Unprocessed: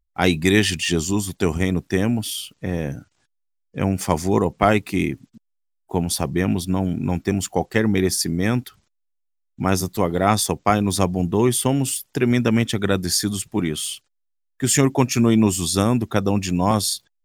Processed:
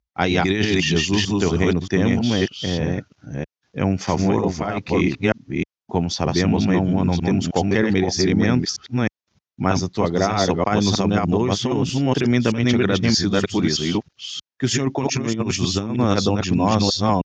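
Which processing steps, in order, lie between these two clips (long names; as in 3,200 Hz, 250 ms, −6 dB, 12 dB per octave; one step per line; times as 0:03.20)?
delay that plays each chunk backwards 313 ms, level −1 dB
Butterworth low-pass 6,500 Hz 72 dB per octave
compressor whose output falls as the input rises −17 dBFS, ratio −0.5
high-pass filter 61 Hz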